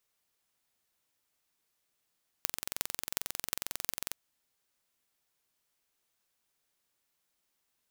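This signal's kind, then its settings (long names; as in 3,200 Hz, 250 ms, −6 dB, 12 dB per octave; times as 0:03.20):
impulse train 22.2 per second, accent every 8, −1.5 dBFS 1.70 s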